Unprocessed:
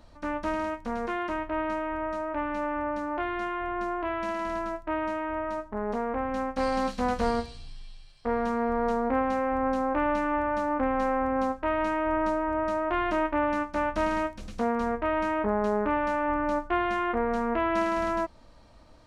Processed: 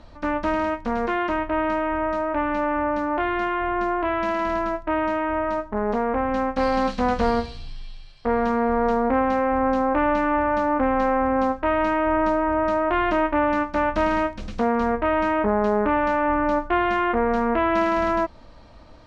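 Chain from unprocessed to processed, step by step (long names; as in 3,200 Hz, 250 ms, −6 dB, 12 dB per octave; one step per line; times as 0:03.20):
low-pass filter 5,000 Hz 12 dB per octave
in parallel at −2.5 dB: brickwall limiter −21 dBFS, peak gain reduction 7.5 dB
on the sum: level +2.5 dB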